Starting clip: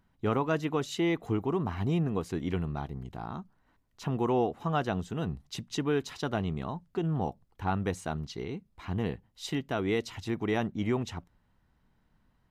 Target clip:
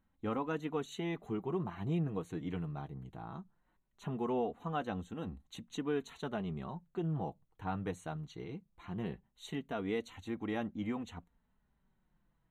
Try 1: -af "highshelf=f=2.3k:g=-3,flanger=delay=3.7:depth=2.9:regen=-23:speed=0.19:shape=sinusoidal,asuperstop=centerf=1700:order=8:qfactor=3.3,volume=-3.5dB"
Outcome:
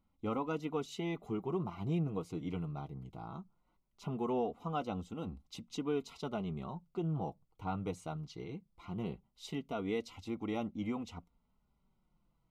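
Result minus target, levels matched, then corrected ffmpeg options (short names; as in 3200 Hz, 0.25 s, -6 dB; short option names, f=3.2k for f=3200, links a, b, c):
2000 Hz band -3.5 dB
-af "highshelf=f=2.3k:g=-3,flanger=delay=3.7:depth=2.9:regen=-23:speed=0.19:shape=sinusoidal,asuperstop=centerf=5100:order=8:qfactor=3.3,volume=-3.5dB"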